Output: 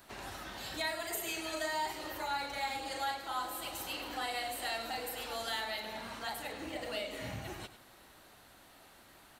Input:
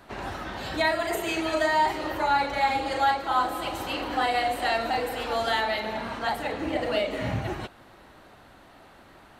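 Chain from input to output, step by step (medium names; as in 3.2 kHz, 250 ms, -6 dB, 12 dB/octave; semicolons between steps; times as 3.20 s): pre-emphasis filter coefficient 0.8; in parallel at +1 dB: compression, threshold -49 dBFS, peak gain reduction 17.5 dB; on the sum: delay 100 ms -12.5 dB; trim -2.5 dB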